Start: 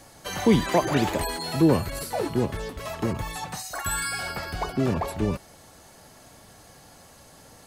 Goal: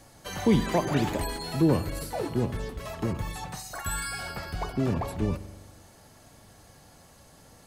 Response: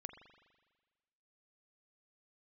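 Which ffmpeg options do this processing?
-filter_complex "[0:a]asplit=2[s0][s1];[1:a]atrim=start_sample=2205,lowshelf=f=270:g=10.5[s2];[s1][s2]afir=irnorm=-1:irlink=0,volume=1[s3];[s0][s3]amix=inputs=2:normalize=0,volume=0.376"

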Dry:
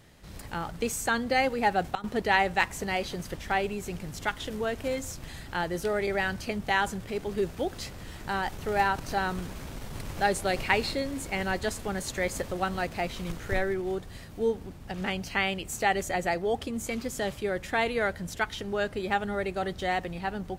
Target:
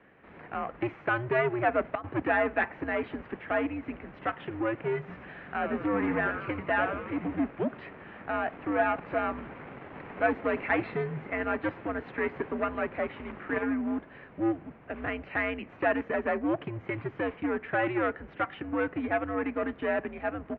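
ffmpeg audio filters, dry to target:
-filter_complex "[0:a]aeval=exprs='clip(val(0),-1,0.0299)':c=same,asplit=3[s0][s1][s2];[s0]afade=t=out:st=5.07:d=0.02[s3];[s1]asplit=8[s4][s5][s6][s7][s8][s9][s10][s11];[s5]adelay=88,afreqshift=-110,volume=0.422[s12];[s6]adelay=176,afreqshift=-220,volume=0.245[s13];[s7]adelay=264,afreqshift=-330,volume=0.141[s14];[s8]adelay=352,afreqshift=-440,volume=0.0822[s15];[s9]adelay=440,afreqshift=-550,volume=0.0479[s16];[s10]adelay=528,afreqshift=-660,volume=0.0275[s17];[s11]adelay=616,afreqshift=-770,volume=0.016[s18];[s4][s12][s13][s14][s15][s16][s17][s18]amix=inputs=8:normalize=0,afade=t=in:st=5.07:d=0.02,afade=t=out:st=7.46:d=0.02[s19];[s2]afade=t=in:st=7.46:d=0.02[s20];[s3][s19][s20]amix=inputs=3:normalize=0,highpass=f=280:t=q:w=0.5412,highpass=f=280:t=q:w=1.307,lowpass=f=2500:t=q:w=0.5176,lowpass=f=2500:t=q:w=0.7071,lowpass=f=2500:t=q:w=1.932,afreqshift=-120,volume=1.33"

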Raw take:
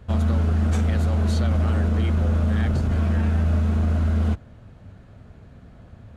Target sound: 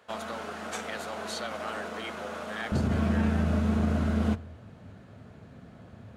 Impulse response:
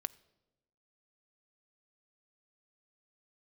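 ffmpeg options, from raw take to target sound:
-filter_complex "[0:a]asetnsamples=n=441:p=0,asendcmd='2.72 highpass f 120',highpass=620[s0];[1:a]atrim=start_sample=2205[s1];[s0][s1]afir=irnorm=-1:irlink=0,volume=1.19"

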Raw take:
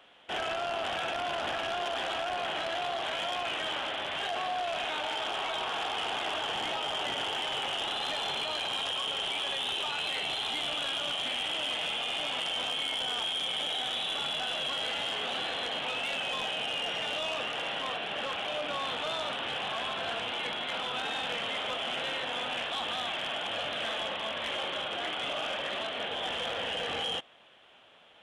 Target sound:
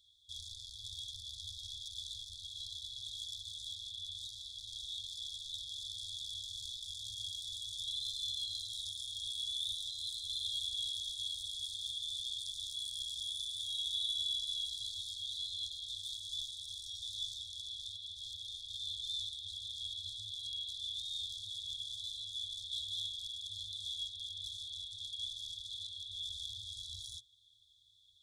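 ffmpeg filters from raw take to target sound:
-af "afftfilt=real='re*(1-between(b*sr/4096,110,3300))':imag='im*(1-between(b*sr/4096,110,3300))':win_size=4096:overlap=0.75"

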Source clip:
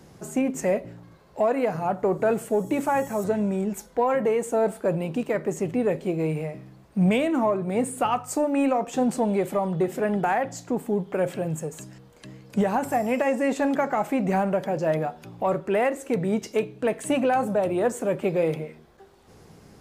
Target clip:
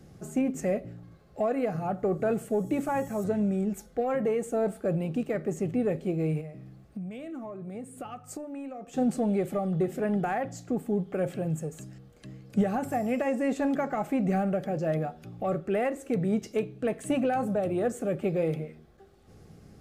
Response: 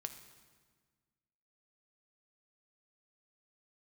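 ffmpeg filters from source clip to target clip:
-filter_complex "[0:a]asuperstop=centerf=960:order=8:qfactor=5.9,lowshelf=f=270:g=9,asplit=3[s0][s1][s2];[s0]afade=t=out:st=6.4:d=0.02[s3];[s1]acompressor=threshold=0.0316:ratio=6,afade=t=in:st=6.4:d=0.02,afade=t=out:st=8.96:d=0.02[s4];[s2]afade=t=in:st=8.96:d=0.02[s5];[s3][s4][s5]amix=inputs=3:normalize=0,volume=0.447"

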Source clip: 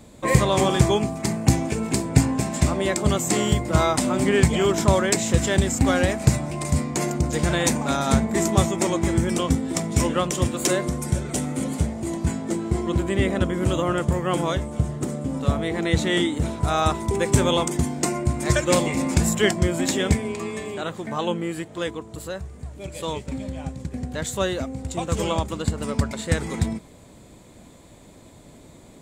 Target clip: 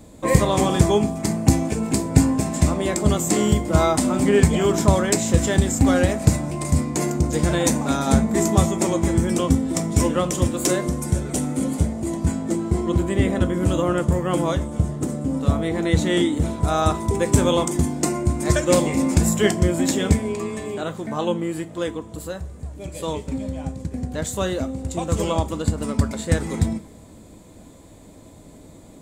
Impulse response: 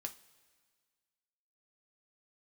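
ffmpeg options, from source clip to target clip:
-filter_complex "[0:a]equalizer=f=2400:w=0.45:g=-5.5,asplit=2[s0][s1];[1:a]atrim=start_sample=2205[s2];[s1][s2]afir=irnorm=-1:irlink=0,volume=2[s3];[s0][s3]amix=inputs=2:normalize=0,volume=0.596"

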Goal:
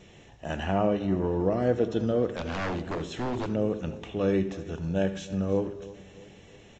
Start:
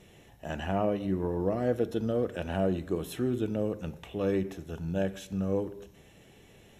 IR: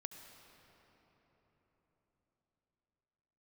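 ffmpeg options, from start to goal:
-filter_complex "[0:a]aecho=1:1:323|646|969|1292:0.126|0.0604|0.029|0.0139,asettb=1/sr,asplit=3[s0][s1][s2];[s0]atrim=end=2.284[s3];[s1]atrim=start=2.28:end=3.47,asetpts=PTS-STARTPTS,afade=t=in:d=0.004:c=qsin,afade=t=out:st=1.186:d=0.004:c=qsin,aeval=exprs='0.0376*(abs(mod(val(0)/0.0376+3,4)-2)-1)':c=same[s4];[s2]atrim=start=3.466[s5];[s3][s4]acrossfade=d=0.004:c1=hsin:c2=qsin[s6];[s6][s5]acrossfade=d=0.004:c1=qsin:c2=hsin[s7];[1:a]atrim=start_sample=2205,atrim=end_sample=3969[s8];[s7][s8]afir=irnorm=-1:irlink=0,volume=2.51" -ar 16000 -c:a libvorbis -b:a 48k

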